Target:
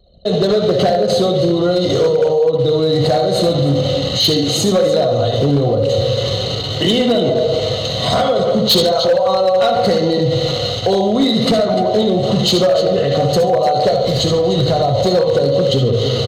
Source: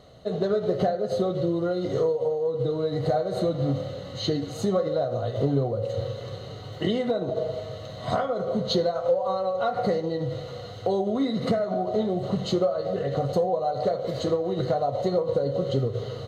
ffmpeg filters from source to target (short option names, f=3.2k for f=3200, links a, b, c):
-filter_complex "[0:a]highshelf=f=2.2k:t=q:w=1.5:g=7.5,asplit=2[a][b];[b]aecho=0:1:63|67|76|139|298:0.335|0.15|0.299|0.141|0.224[c];[a][c]amix=inputs=2:normalize=0,asplit=3[d][e][f];[d]afade=t=out:st=13.91:d=0.02[g];[e]asubboost=boost=2.5:cutoff=160,afade=t=in:st=13.91:d=0.02,afade=t=out:st=15.05:d=0.02[h];[f]afade=t=in:st=15.05:d=0.02[i];[g][h][i]amix=inputs=3:normalize=0,anlmdn=0.631,acrossover=split=130[j][k];[k]asoftclip=type=hard:threshold=-18dB[l];[j][l]amix=inputs=2:normalize=0,alimiter=level_in=22.5dB:limit=-1dB:release=50:level=0:latency=1,volume=-6.5dB"